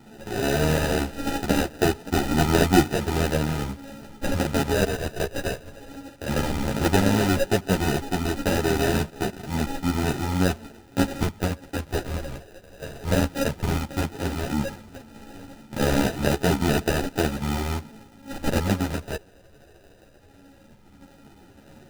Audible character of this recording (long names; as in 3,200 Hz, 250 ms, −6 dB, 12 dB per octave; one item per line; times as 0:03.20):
a buzz of ramps at a fixed pitch in blocks of 32 samples
phaser sweep stages 12, 0.14 Hz, lowest notch 230–4,100 Hz
aliases and images of a low sample rate 1,100 Hz, jitter 0%
a shimmering, thickened sound